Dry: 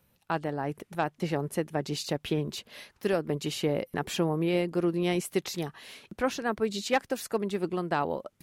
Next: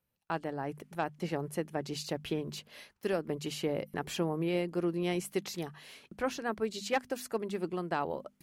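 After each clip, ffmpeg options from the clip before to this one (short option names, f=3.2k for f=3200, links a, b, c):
-af "bandreject=f=3.7k:w=23,agate=range=-11dB:threshold=-54dB:ratio=16:detection=peak,bandreject=f=50:t=h:w=6,bandreject=f=100:t=h:w=6,bandreject=f=150:t=h:w=6,bandreject=f=200:t=h:w=6,bandreject=f=250:t=h:w=6,volume=-4.5dB"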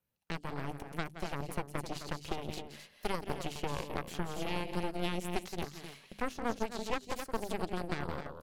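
-filter_complex "[0:a]aecho=1:1:169.1|259.5:0.282|0.316,acrossover=split=760|2800[a][b][c];[a]acompressor=threshold=-35dB:ratio=4[d];[b]acompressor=threshold=-52dB:ratio=4[e];[c]acompressor=threshold=-50dB:ratio=4[f];[d][e][f]amix=inputs=3:normalize=0,aeval=exprs='0.0631*(cos(1*acos(clip(val(0)/0.0631,-1,1)))-cos(1*PI/2))+0.00708*(cos(3*acos(clip(val(0)/0.0631,-1,1)))-cos(3*PI/2))+0.0282*(cos(4*acos(clip(val(0)/0.0631,-1,1)))-cos(4*PI/2))':c=same,volume=1dB"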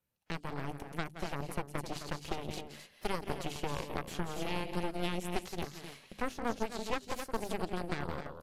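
-ar 32000 -c:a aac -b:a 64k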